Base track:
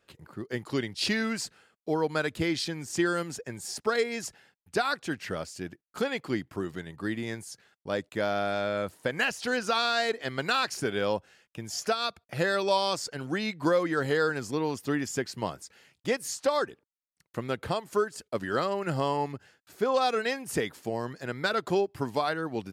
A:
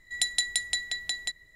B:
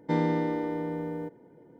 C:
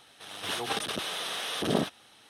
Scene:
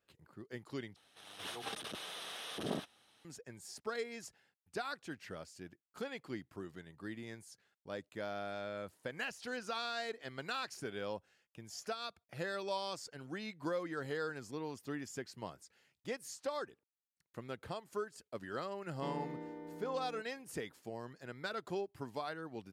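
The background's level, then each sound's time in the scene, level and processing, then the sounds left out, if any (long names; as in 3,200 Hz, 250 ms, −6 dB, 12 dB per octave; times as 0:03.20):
base track −13 dB
0:00.96: overwrite with C −11.5 dB
0:18.93: mix in B −17 dB
not used: A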